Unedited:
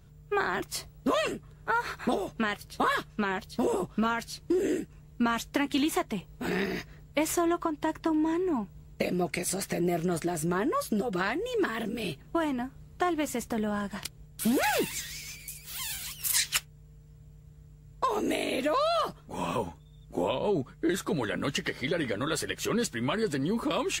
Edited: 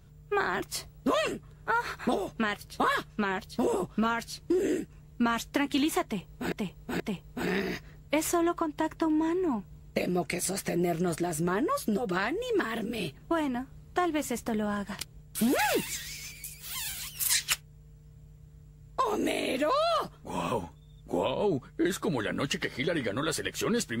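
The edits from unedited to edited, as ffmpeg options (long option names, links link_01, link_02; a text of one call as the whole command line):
ffmpeg -i in.wav -filter_complex "[0:a]asplit=3[link_01][link_02][link_03];[link_01]atrim=end=6.522[link_04];[link_02]atrim=start=6.038:end=6.522[link_05];[link_03]atrim=start=6.038[link_06];[link_04][link_05]acrossfade=duration=0.004:curve1=hsin:curve2=hsin[link_07];[link_07][link_06]acrossfade=duration=0.004:curve1=hsin:curve2=hsin" out.wav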